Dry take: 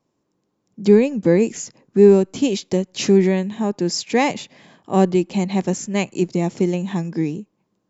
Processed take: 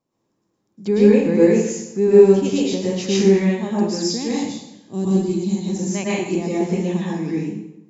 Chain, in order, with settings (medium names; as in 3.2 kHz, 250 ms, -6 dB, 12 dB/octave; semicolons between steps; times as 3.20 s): 3.95–5.77 s: high-order bell 1.2 kHz -13.5 dB 2.8 oct; plate-style reverb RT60 0.85 s, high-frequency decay 0.8×, pre-delay 95 ms, DRR -7.5 dB; trim -7.5 dB